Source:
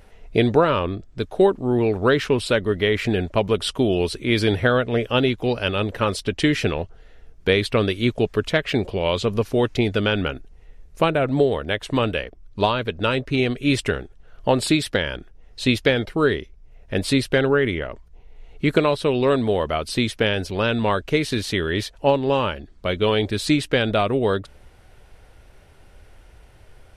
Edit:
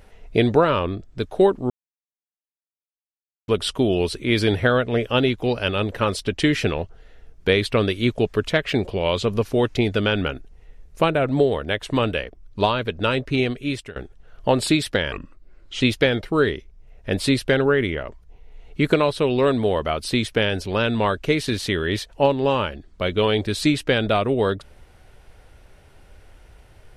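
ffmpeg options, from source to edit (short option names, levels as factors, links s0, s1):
-filter_complex "[0:a]asplit=6[s0][s1][s2][s3][s4][s5];[s0]atrim=end=1.7,asetpts=PTS-STARTPTS,afade=t=out:st=1.696:d=0.004:c=hsin[s6];[s1]atrim=start=1.7:end=3.48,asetpts=PTS-STARTPTS,volume=0[s7];[s2]atrim=start=3.48:end=13.96,asetpts=PTS-STARTPTS,afade=t=in:d=0.004:c=hsin,afade=t=out:st=9.9:d=0.58:silence=0.0841395[s8];[s3]atrim=start=13.96:end=15.124,asetpts=PTS-STARTPTS,afade=t=in:d=0.004:c=hsin:silence=0.0841395[s9];[s4]atrim=start=15.12:end=15.65,asetpts=PTS-STARTPTS,asetrate=33957,aresample=44100[s10];[s5]atrim=start=15.646[s11];[s6][s7][s8][s9]concat=n=4:v=0:a=1[s12];[s12][s10]acrossfade=d=0.004:c1=hsin:c2=hsin[s13];[s13][s11]acrossfade=d=0.004:c1=hsin:c2=hsin"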